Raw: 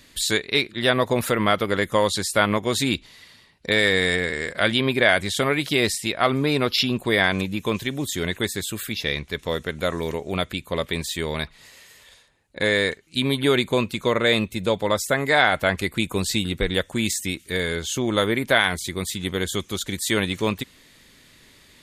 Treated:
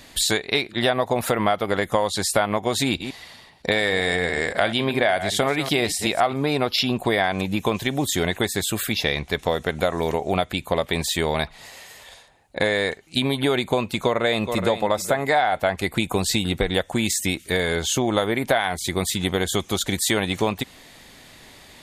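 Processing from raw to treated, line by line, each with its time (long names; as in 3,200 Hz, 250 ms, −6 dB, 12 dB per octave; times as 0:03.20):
0:02.85–0:06.36: delay that plays each chunk backwards 129 ms, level −13 dB
0:13.97–0:14.81: delay throw 420 ms, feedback 20%, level −12 dB
whole clip: parametric band 750 Hz +11.5 dB 0.6 octaves; downward compressor 5 to 1, threshold −23 dBFS; level +5 dB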